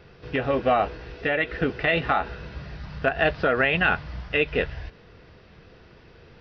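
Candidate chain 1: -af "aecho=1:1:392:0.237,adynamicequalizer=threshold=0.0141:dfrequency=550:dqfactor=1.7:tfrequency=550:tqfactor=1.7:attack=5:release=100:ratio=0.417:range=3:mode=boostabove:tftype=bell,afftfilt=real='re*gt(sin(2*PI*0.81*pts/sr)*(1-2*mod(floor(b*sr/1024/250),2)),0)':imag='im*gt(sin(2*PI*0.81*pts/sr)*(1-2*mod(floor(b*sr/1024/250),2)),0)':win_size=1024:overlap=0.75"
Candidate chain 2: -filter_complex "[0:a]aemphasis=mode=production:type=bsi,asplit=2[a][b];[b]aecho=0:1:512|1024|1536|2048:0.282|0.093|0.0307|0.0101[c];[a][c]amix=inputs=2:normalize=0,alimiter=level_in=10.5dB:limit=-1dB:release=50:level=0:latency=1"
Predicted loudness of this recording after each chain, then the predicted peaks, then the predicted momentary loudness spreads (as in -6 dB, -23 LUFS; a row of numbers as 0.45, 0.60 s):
-26.0, -15.0 LUFS; -9.5, -1.0 dBFS; 14, 13 LU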